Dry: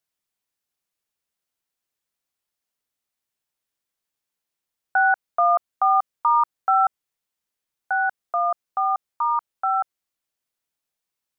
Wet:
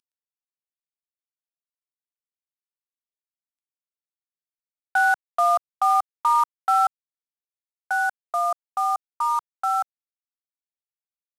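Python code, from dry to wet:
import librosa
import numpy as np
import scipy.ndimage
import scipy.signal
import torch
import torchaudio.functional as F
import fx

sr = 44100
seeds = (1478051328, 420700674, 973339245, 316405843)

y = fx.cvsd(x, sr, bps=64000)
y = fx.highpass(y, sr, hz=440.0, slope=6)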